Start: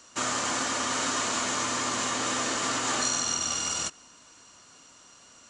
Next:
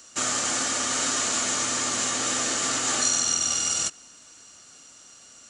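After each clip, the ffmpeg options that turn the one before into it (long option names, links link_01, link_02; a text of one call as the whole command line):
ffmpeg -i in.wav -af "highshelf=frequency=6500:gain=11.5,bandreject=frequency=1000:width=6" out.wav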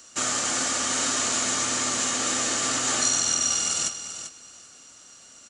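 ffmpeg -i in.wav -af "aecho=1:1:392|784:0.299|0.0537" out.wav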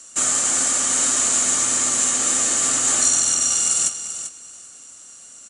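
ffmpeg -i in.wav -af "aexciter=amount=4.3:drive=6.3:freq=7200,aresample=22050,aresample=44100" out.wav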